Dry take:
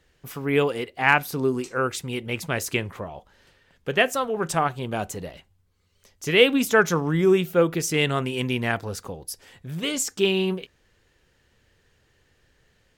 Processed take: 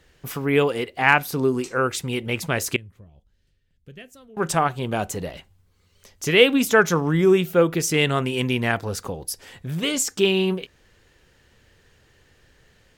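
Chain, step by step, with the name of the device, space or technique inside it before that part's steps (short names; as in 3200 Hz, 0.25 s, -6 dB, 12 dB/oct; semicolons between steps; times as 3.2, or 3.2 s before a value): parallel compression (in parallel at -2 dB: compressor, threshold -34 dBFS, peak gain reduction 21.5 dB); 2.76–4.37 on the sum: passive tone stack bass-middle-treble 10-0-1; gain +1 dB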